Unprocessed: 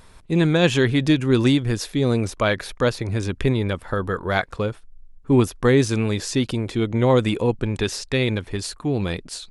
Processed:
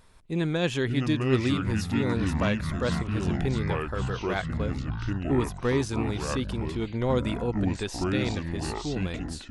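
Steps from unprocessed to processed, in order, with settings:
delay with pitch and tempo change per echo 475 ms, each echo −5 semitones, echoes 3
level −9 dB

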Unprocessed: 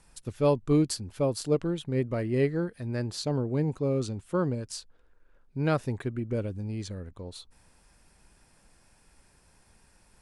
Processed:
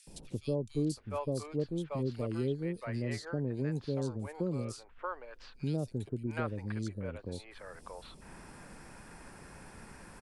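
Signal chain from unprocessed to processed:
three-band delay without the direct sound highs, lows, mids 70/700 ms, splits 660/3,100 Hz
multiband upward and downward compressor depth 70%
level −5.5 dB

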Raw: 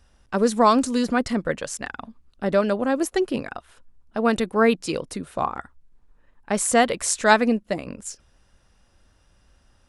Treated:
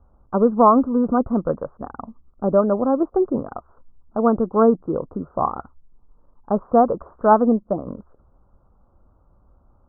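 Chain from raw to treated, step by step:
Butterworth low-pass 1,300 Hz 72 dB per octave
level +3.5 dB

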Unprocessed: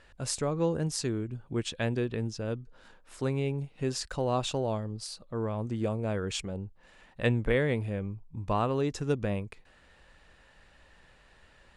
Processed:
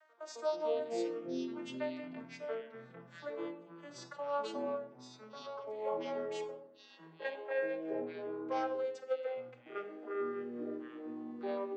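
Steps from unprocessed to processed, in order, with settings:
vocoder with a gliding carrier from D#4, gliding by −4 semitones
Chebyshev high-pass filter 380 Hz, order 6
parametric band 1,000 Hz +3.5 dB 1.6 octaves
on a send at −5 dB: convolution reverb RT60 0.55 s, pre-delay 6 ms
on the sum: delay with pitch and tempo change per echo 81 ms, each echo −5 semitones, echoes 3
level −4.5 dB

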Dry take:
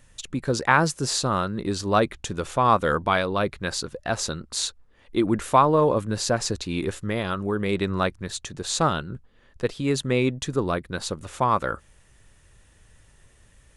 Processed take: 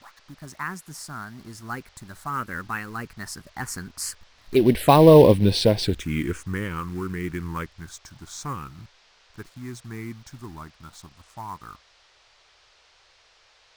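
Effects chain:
turntable start at the beginning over 0.38 s
source passing by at 0:05.18, 42 m/s, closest 17 metres
in parallel at −6 dB: log-companded quantiser 4 bits
on the sum: phaser swept by the level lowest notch 430 Hz, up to 1,300 Hz, full sweep at −21.5 dBFS
noise in a band 420–5,300 Hz −66 dBFS
level +7 dB

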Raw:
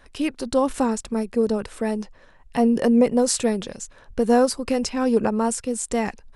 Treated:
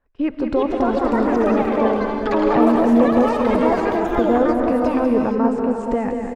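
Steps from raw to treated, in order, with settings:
camcorder AGC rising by 16 dB per second
low-pass filter 1,500 Hz 12 dB per octave
noise gate −39 dBFS, range −18 dB
single-tap delay 192 ms −7 dB
reverb whose tail is shaped and stops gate 500 ms rising, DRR 3 dB
delay with pitch and tempo change per echo 413 ms, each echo +5 semitones, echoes 3
level −1 dB

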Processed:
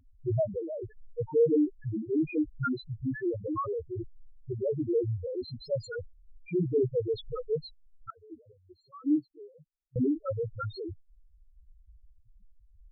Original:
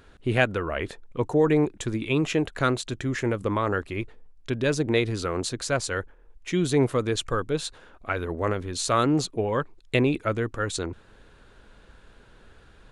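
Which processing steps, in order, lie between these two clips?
spectral peaks only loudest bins 1
0:08.10–0:09.96: formant filter u
level +4 dB

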